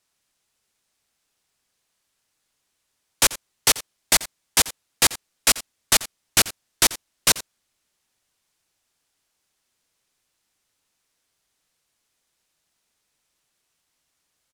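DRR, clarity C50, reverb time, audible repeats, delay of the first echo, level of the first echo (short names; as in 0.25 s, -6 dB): none, none, none, 1, 87 ms, -17.5 dB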